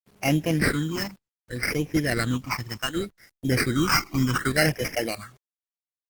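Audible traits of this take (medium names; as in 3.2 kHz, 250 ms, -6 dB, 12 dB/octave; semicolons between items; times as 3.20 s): aliases and images of a low sample rate 3.5 kHz, jitter 0%; phasing stages 8, 0.67 Hz, lowest notch 470–1300 Hz; a quantiser's noise floor 10-bit, dither none; Opus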